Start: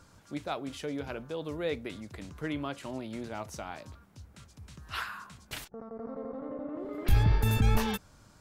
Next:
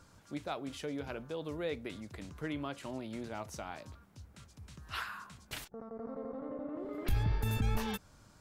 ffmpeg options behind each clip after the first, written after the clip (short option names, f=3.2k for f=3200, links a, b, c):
-af "acompressor=threshold=-33dB:ratio=1.5,volume=-2.5dB"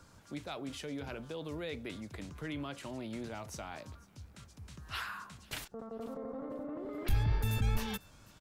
-filter_complex "[0:a]acrossover=split=150|1900[a][b][c];[b]alimiter=level_in=12.5dB:limit=-24dB:level=0:latency=1:release=14,volume=-12.5dB[d];[c]aecho=1:1:495|990:0.0891|0.0232[e];[a][d][e]amix=inputs=3:normalize=0,volume=1.5dB"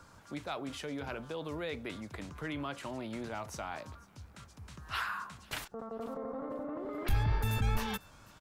-af "equalizer=f=1.1k:t=o:w=1.8:g=6"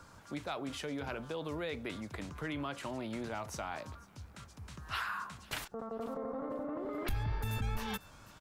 -af "acompressor=threshold=-35dB:ratio=2.5,volume=1dB"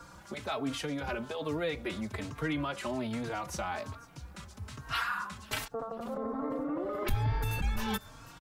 -filter_complex "[0:a]asplit=2[a][b];[b]adelay=3.8,afreqshift=1.2[c];[a][c]amix=inputs=2:normalize=1,volume=7.5dB"